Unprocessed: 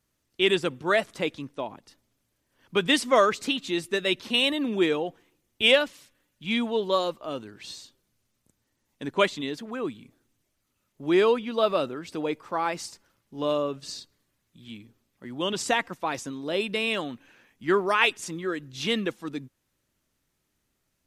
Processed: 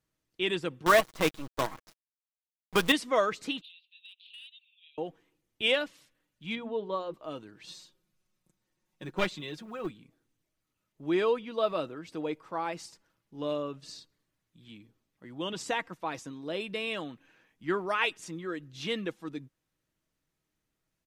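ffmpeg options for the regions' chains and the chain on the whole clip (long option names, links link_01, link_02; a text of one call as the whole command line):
ffmpeg -i in.wav -filter_complex "[0:a]asettb=1/sr,asplit=3[link_01][link_02][link_03];[link_01]atrim=end=0.864[link_04];[link_02]atrim=start=0.86:end=2.92,asetpts=PTS-STARTPTS,afade=type=in:duration=0.004:curve=qsin,afade=type=out:start_time=2.056:duration=0.004:curve=qsin,equalizer=frequency=1100:width_type=o:width=0.26:gain=11,acontrast=65,acrusher=bits=4:dc=4:mix=0:aa=0.000001[link_05];[link_03]atrim=start=2.916[link_06];[link_04][link_05]acrossfade=duration=0.004:curve1=hsin:curve2=qsin[link_07];[link_07][link_06]acrossfade=duration=0.004:curve1=qsin:curve2=hsin,asettb=1/sr,asplit=3[link_08][link_09][link_10];[link_08]atrim=end=3.614[link_11];[link_09]atrim=start=3.61:end=4.98,asetpts=PTS-STARTPTS,afade=type=in:duration=0.004:curve=qsin,afade=type=out:start_time=1.366:duration=0.004:curve=qsin,acompressor=threshold=-35dB:ratio=8:attack=3.2:release=140:knee=1:detection=peak,asuperpass=centerf=3200:order=8:qfactor=2.2,asoftclip=type=hard:threshold=-35.5dB[link_12];[link_10]atrim=start=4.976[link_13];[link_11][link_12]acrossfade=duration=0.004:curve1=hsin:curve2=qsin[link_14];[link_14][link_13]acrossfade=duration=0.004:curve1=qsin:curve2=hsin,asettb=1/sr,asplit=3[link_15][link_16][link_17];[link_15]atrim=end=6.554[link_18];[link_16]atrim=start=6.55:end=7.14,asetpts=PTS-STARTPTS,afade=type=in:duration=0.004:curve=qsin,afade=type=out:start_time=0.586:duration=0.004:curve=qsin,lowpass=frequency=1200:poles=1,bandreject=frequency=60:width_type=h:width=6,bandreject=frequency=120:width_type=h:width=6,bandreject=frequency=180:width_type=h:width=6,bandreject=frequency=240:width_type=h:width=6,bandreject=frequency=300:width_type=h:width=6,bandreject=frequency=360:width_type=h:width=6,bandreject=frequency=420:width_type=h:width=6[link_19];[link_17]atrim=start=7.136[link_20];[link_18][link_19]acrossfade=duration=0.004:curve1=hsin:curve2=qsin[link_21];[link_21][link_20]acrossfade=duration=0.004:curve1=qsin:curve2=hsin,asettb=1/sr,asplit=3[link_22][link_23][link_24];[link_22]atrim=end=7.674[link_25];[link_23]atrim=start=7.67:end=9.91,asetpts=PTS-STARTPTS,afade=type=in:duration=0.004:curve=qsin,afade=type=out:start_time=2.236:duration=0.004:curve=qsin,aecho=1:1:5.5:0.74,atrim=end_sample=98784,acrusher=bits=8:mode=log:mix=0:aa=0.000001,aeval=exprs='clip(val(0),-1,0.0596)':channel_layout=same[link_26];[link_24]atrim=start=9.906[link_27];[link_25][link_26]acrossfade=duration=0.004:curve1=hsin:curve2=qsin[link_28];[link_28][link_27]acrossfade=duration=0.004:curve1=qsin:curve2=hsin,highshelf=frequency=5500:gain=-5,aecho=1:1:6.3:0.31,volume=-6.5dB" out.wav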